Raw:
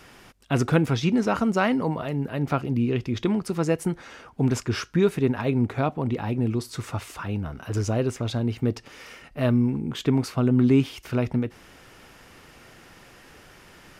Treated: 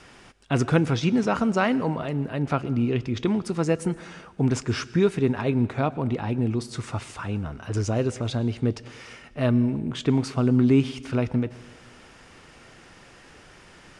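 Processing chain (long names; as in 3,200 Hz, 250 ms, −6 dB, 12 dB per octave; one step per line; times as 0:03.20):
Butterworth low-pass 10,000 Hz 48 dB per octave
convolution reverb RT60 1.3 s, pre-delay 98 ms, DRR 18.5 dB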